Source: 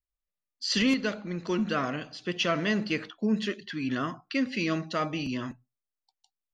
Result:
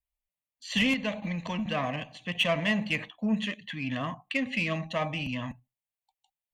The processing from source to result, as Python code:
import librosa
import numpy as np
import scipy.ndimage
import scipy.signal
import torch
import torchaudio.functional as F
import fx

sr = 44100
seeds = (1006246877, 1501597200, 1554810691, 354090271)

p1 = fx.level_steps(x, sr, step_db=21)
p2 = x + F.gain(torch.from_numpy(p1), 1.5).numpy()
p3 = fx.fixed_phaser(p2, sr, hz=1400.0, stages=6)
p4 = fx.cheby_harmonics(p3, sr, harmonics=(7,), levels_db=(-28,), full_scale_db=-16.0)
p5 = fx.band_squash(p4, sr, depth_pct=100, at=(1.22, 1.66))
y = F.gain(torch.from_numpy(p5), 3.0).numpy()